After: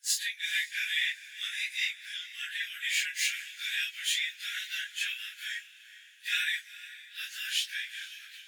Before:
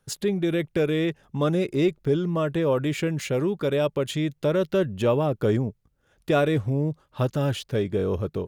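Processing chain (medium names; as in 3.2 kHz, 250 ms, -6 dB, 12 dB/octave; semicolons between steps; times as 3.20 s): phase randomisation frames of 100 ms; steep high-pass 1.6 kHz 96 dB/octave; echo that smears into a reverb 454 ms, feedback 47%, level -16 dB; trim +6.5 dB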